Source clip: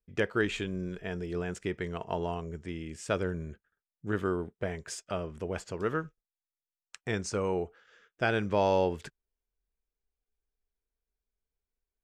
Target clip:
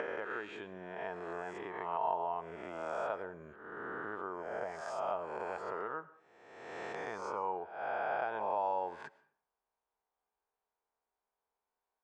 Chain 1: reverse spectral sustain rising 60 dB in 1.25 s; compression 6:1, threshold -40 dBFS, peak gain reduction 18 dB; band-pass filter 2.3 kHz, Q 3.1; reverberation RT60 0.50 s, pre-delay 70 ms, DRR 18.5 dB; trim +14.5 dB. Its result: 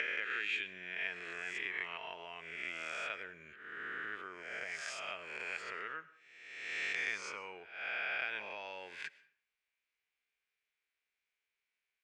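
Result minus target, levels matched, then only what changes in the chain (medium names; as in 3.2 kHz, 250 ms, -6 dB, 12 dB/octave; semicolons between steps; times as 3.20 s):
1 kHz band -10.5 dB
change: band-pass filter 890 Hz, Q 3.1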